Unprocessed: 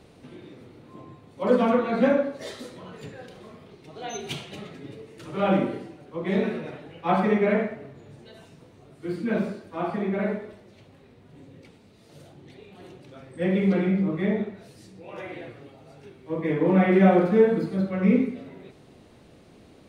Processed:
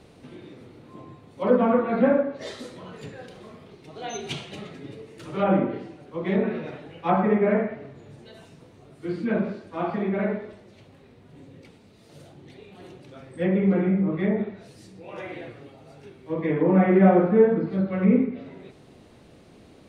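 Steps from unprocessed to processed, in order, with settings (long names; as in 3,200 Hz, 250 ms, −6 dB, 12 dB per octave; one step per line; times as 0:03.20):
treble cut that deepens with the level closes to 1,800 Hz, closed at −19.5 dBFS
level +1 dB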